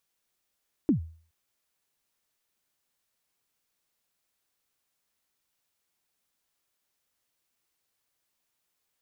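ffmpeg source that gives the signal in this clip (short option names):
-f lavfi -i "aevalsrc='0.158*pow(10,-3*t/0.44)*sin(2*PI*(340*0.111/log(81/340)*(exp(log(81/340)*min(t,0.111)/0.111)-1)+81*max(t-0.111,0)))':d=0.42:s=44100"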